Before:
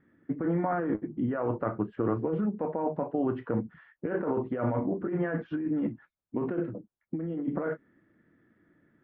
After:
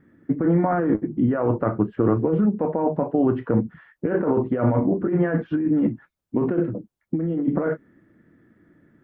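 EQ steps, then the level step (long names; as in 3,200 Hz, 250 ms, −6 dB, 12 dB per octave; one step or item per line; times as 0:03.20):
low-shelf EQ 500 Hz +5.5 dB
+5.0 dB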